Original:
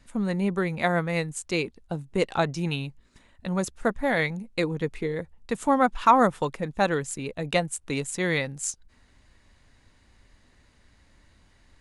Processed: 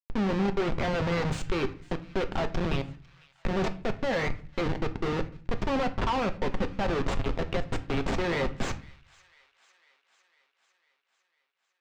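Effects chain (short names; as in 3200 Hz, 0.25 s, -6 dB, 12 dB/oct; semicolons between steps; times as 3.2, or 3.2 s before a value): 0.95–1.42 switching spikes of -29.5 dBFS; HPF 450 Hz 6 dB/oct; high shelf 4500 Hz -2.5 dB; 7.38–8.19 compressor 10:1, threshold -31 dBFS, peak gain reduction 12 dB; Schmitt trigger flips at -33.5 dBFS; air absorption 180 m; thin delay 0.501 s, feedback 64%, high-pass 1500 Hz, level -22 dB; on a send at -8 dB: reverb RT60 0.45 s, pre-delay 4 ms; on the sum: gain +4 dB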